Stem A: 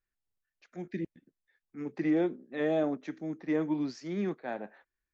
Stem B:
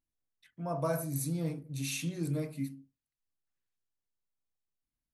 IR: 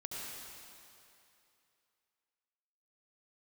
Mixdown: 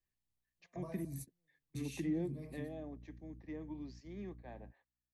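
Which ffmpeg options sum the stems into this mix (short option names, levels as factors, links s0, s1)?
-filter_complex "[0:a]volume=0.708,afade=t=out:st=2.38:d=0.31:silence=0.266073,asplit=2[s0][s1];[1:a]aeval=exprs='val(0)+0.00398*(sin(2*PI*60*n/s)+sin(2*PI*2*60*n/s)/2+sin(2*PI*3*60*n/s)/3+sin(2*PI*4*60*n/s)/4+sin(2*PI*5*60*n/s)/5)':c=same,equalizer=f=1300:t=o:w=3:g=4,acompressor=threshold=0.0178:ratio=6,volume=0.473[s2];[s1]apad=whole_len=226309[s3];[s2][s3]sidechaingate=range=0.00708:threshold=0.00126:ratio=16:detection=peak[s4];[s0][s4]amix=inputs=2:normalize=0,equalizer=f=92:w=1.6:g=5,acrossover=split=270[s5][s6];[s6]acompressor=threshold=0.00562:ratio=6[s7];[s5][s7]amix=inputs=2:normalize=0,asuperstop=centerf=1400:order=4:qfactor=3.8"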